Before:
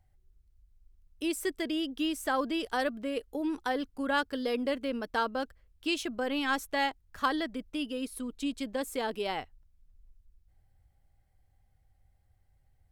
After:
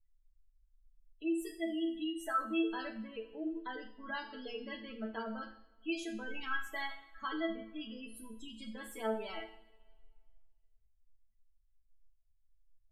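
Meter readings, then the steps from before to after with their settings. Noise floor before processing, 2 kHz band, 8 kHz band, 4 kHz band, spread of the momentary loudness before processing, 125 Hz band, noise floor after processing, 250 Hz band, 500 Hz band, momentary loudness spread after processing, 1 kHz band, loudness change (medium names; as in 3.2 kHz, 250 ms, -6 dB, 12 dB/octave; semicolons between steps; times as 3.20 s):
-69 dBFS, -7.5 dB, -11.0 dB, -9.5 dB, 6 LU, no reading, -71 dBFS, -5.5 dB, -8.0 dB, 12 LU, -8.5 dB, -7.0 dB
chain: chord resonator A3 fifth, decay 0.3 s; spectral gate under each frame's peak -20 dB strong; two-slope reverb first 0.58 s, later 1.9 s, from -20 dB, DRR 5 dB; trim +8 dB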